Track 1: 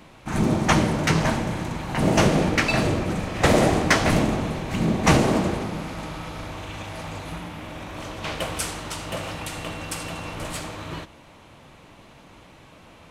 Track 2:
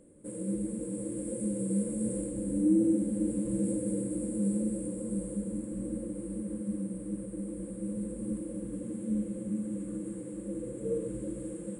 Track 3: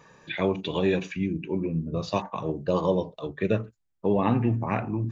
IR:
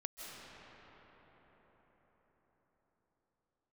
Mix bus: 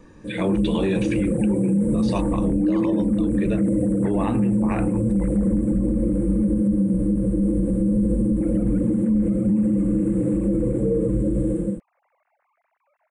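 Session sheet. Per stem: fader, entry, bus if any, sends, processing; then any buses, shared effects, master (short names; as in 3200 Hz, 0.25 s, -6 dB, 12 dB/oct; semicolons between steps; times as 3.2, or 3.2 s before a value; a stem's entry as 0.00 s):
-19.5 dB, 0.15 s, muted 6.46–8.41, no bus, no send, sine-wave speech; steep low-pass 2300 Hz 48 dB/oct; compressor, threshold -21 dBFS, peak gain reduction 11 dB
+1.5 dB, 0.00 s, bus A, no send, tilt -3.5 dB/oct
-3.0 dB, 0.00 s, bus A, no send, dry
bus A: 0.0 dB, AGC gain up to 12.5 dB; limiter -11 dBFS, peak gain reduction 9.5 dB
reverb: off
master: limiter -13.5 dBFS, peak gain reduction 3 dB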